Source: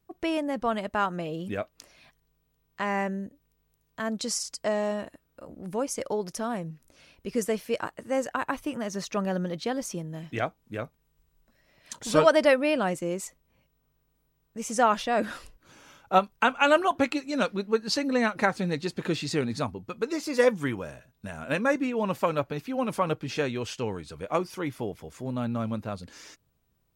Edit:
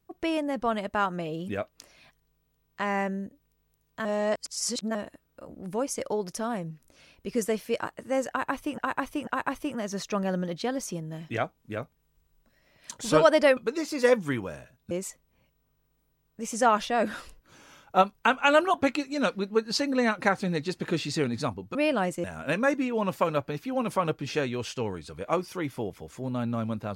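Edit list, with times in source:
0:04.05–0:04.95: reverse
0:08.29–0:08.78: repeat, 3 plays
0:12.59–0:13.08: swap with 0:19.92–0:21.26

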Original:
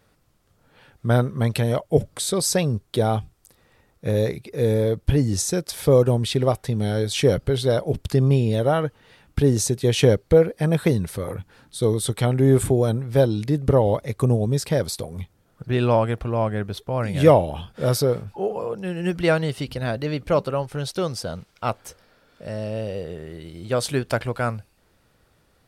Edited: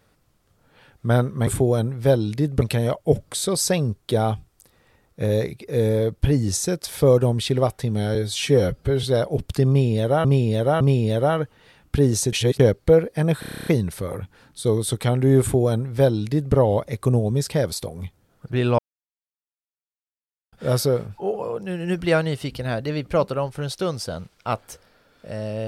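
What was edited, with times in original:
0:07.00–0:07.59: time-stretch 1.5×
0:08.24–0:08.80: repeat, 3 plays
0:09.76–0:10.03: reverse
0:10.83: stutter 0.03 s, 10 plays
0:12.57–0:13.72: duplicate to 0:01.47
0:15.95–0:17.69: silence

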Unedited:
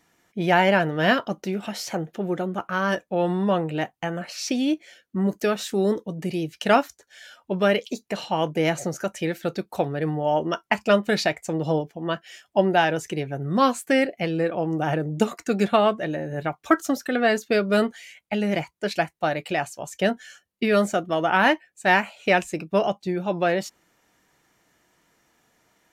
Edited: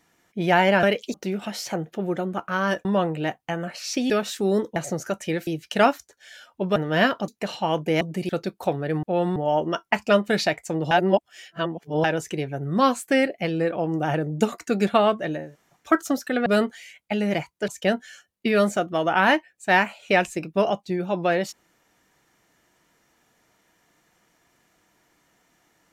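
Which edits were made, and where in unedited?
0:00.83–0:01.35: swap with 0:07.66–0:07.97
0:03.06–0:03.39: move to 0:10.15
0:04.64–0:05.43: remove
0:06.09–0:06.37: swap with 0:08.70–0:09.41
0:11.70–0:12.83: reverse
0:16.23–0:16.62: fill with room tone, crossfade 0.24 s
0:17.25–0:17.67: remove
0:18.89–0:19.85: remove

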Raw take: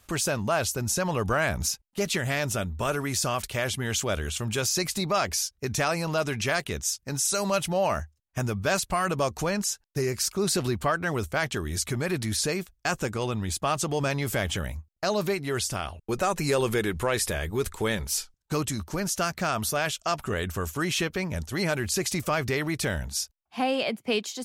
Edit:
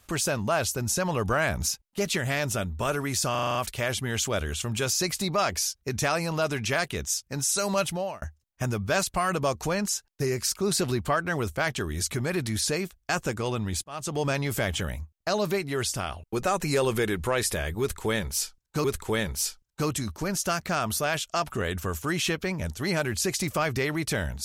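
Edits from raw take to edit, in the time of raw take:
0:03.31: stutter 0.04 s, 7 plays
0:07.62–0:07.98: fade out
0:13.60–0:13.96: fade in
0:17.56–0:18.60: repeat, 2 plays

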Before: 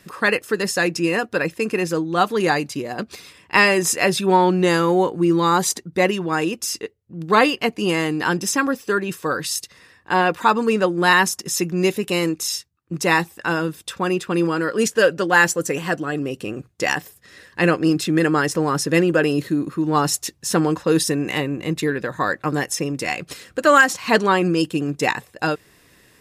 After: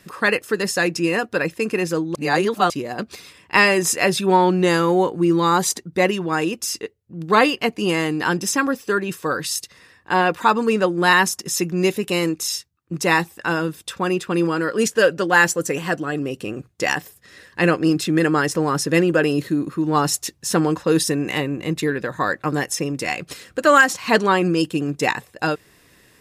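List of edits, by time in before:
0:02.15–0:02.70: reverse

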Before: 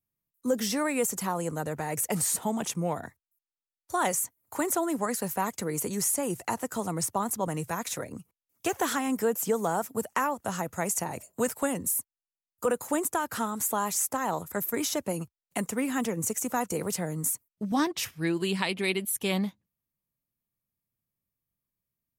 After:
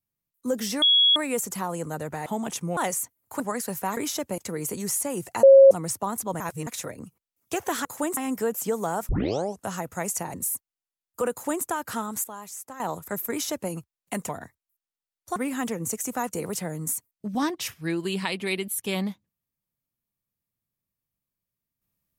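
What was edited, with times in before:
0:00.82: insert tone 3,340 Hz −15 dBFS 0.34 s
0:01.92–0:02.40: remove
0:02.91–0:03.98: move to 0:15.73
0:04.61–0:04.94: remove
0:06.56–0:06.84: beep over 543 Hz −8 dBFS
0:07.53–0:07.80: reverse
0:09.90: tape start 0.55 s
0:11.15–0:11.78: remove
0:12.76–0:13.08: duplicate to 0:08.98
0:13.68–0:14.24: clip gain −11 dB
0:14.74–0:15.15: duplicate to 0:05.51

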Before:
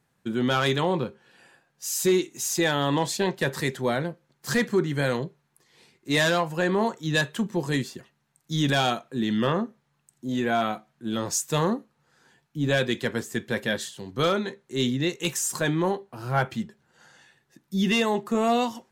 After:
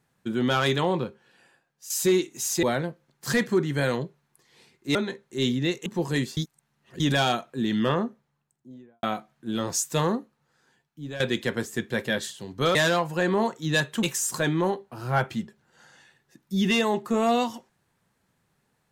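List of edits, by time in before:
0:00.87–0:01.90: fade out, to −10.5 dB
0:02.63–0:03.84: remove
0:06.16–0:07.44: swap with 0:14.33–0:15.24
0:07.95–0:08.58: reverse
0:09.46–0:10.61: fade out and dull
0:11.53–0:12.78: fade out, to −14 dB

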